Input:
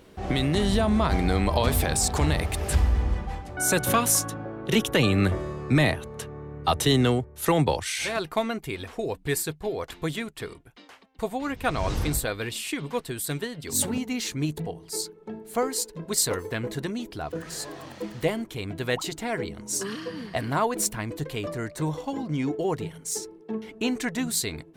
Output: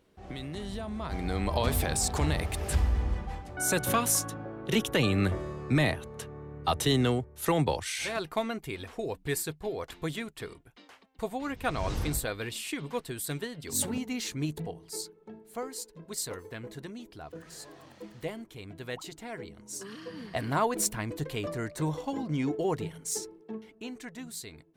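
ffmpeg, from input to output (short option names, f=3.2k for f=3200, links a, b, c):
-af "volume=4dB,afade=t=in:st=0.98:d=0.65:silence=0.316228,afade=t=out:st=14.66:d=0.79:silence=0.473151,afade=t=in:st=19.88:d=0.65:silence=0.375837,afade=t=out:st=23.2:d=0.55:silence=0.266073"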